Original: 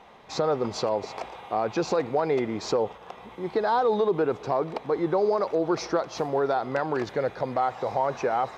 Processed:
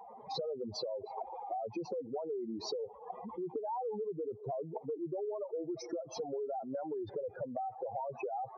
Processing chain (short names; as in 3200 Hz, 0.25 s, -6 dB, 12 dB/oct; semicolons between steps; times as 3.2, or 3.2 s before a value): spectral contrast raised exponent 3.5; compressor 6:1, threshold -38 dBFS, peak gain reduction 16.5 dB; gain +1 dB